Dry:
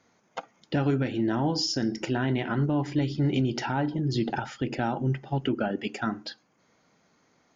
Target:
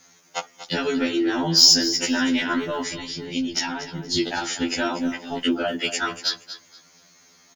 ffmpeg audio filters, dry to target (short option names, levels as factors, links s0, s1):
-filter_complex "[0:a]asettb=1/sr,asplit=3[s0][s1][s2];[s0]atrim=end=2.934[s3];[s1]atrim=start=2.93:end=4.17,asetpts=PTS-STARTPTS,afade=t=in:d=0.004:c=qsin,afade=t=out:st=1.236:d=0.004:c=qsin,acrossover=split=160[s4][s5];[s5]acompressor=threshold=0.02:ratio=3[s6];[s4][s6]amix=inputs=2:normalize=0[s7];[s2]atrim=start=4.166[s8];[s3][s7]acrossfade=d=0.004:c1=hsin:c2=qsin[s9];[s9][s8]acrossfade=d=0.004:c1=qsin:c2=hsin,crystalizer=i=7.5:c=0,acontrast=61,aecho=1:1:237|474|711:0.224|0.0537|0.0129,afftfilt=real='re*2*eq(mod(b,4),0)':imag='im*2*eq(mod(b,4),0)':win_size=2048:overlap=0.75,volume=0.841"